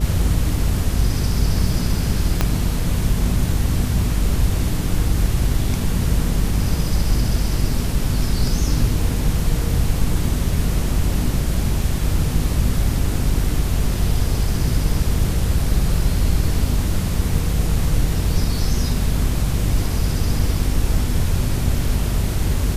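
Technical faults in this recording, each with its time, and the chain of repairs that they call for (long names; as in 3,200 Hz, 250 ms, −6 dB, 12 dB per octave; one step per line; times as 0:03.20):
mains buzz 50 Hz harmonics 9 −23 dBFS
0:02.41: click −3 dBFS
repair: click removal
hum removal 50 Hz, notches 9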